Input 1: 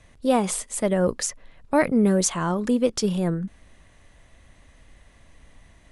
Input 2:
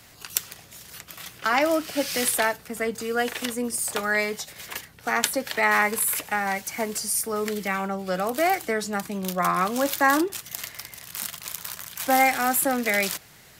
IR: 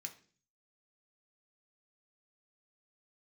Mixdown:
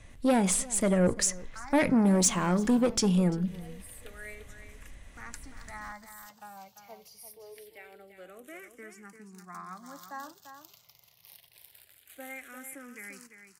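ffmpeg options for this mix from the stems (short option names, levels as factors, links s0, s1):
-filter_complex "[0:a]lowshelf=f=160:g=9.5,asoftclip=type=tanh:threshold=0.141,volume=0.794,asplit=4[s0][s1][s2][s3];[s1]volume=0.708[s4];[s2]volume=0.0944[s5];[1:a]asplit=2[s6][s7];[s7]afreqshift=-0.25[s8];[s6][s8]amix=inputs=2:normalize=1,adelay=100,volume=0.106,asplit=2[s9][s10];[s10]volume=0.355[s11];[s3]apad=whole_len=604036[s12];[s9][s12]sidechaincompress=threshold=0.0158:ratio=8:attack=16:release=318[s13];[2:a]atrim=start_sample=2205[s14];[s4][s14]afir=irnorm=-1:irlink=0[s15];[s5][s11]amix=inputs=2:normalize=0,aecho=0:1:344:1[s16];[s0][s13][s15][s16]amix=inputs=4:normalize=0"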